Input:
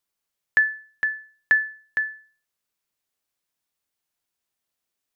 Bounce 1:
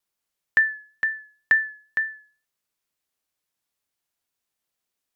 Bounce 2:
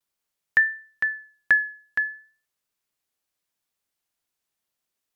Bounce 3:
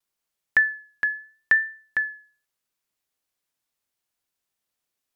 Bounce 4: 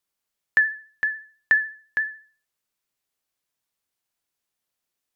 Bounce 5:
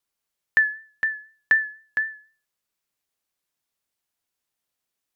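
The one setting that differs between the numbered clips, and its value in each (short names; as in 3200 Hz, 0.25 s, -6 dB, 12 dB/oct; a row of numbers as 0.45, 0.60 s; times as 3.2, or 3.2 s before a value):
vibrato, rate: 2.1, 0.44, 0.77, 14, 4 Hz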